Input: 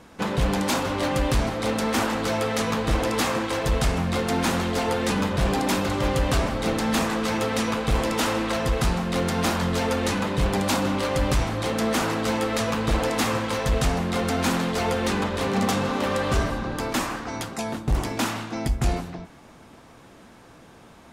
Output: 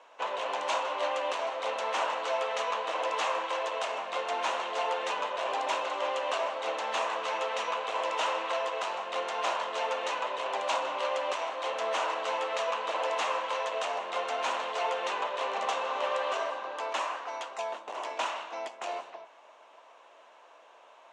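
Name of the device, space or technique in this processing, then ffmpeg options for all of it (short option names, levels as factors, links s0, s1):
phone speaker on a table: -af "highpass=f=480:w=0.5412,highpass=f=480:w=1.3066,equalizer=f=620:t=q:w=4:g=8,equalizer=f=1000:t=q:w=4:g=9,equalizer=f=2800:t=q:w=4:g=7,equalizer=f=4900:t=q:w=4:g=-7,lowpass=f=6900:w=0.5412,lowpass=f=6900:w=1.3066,volume=0.398"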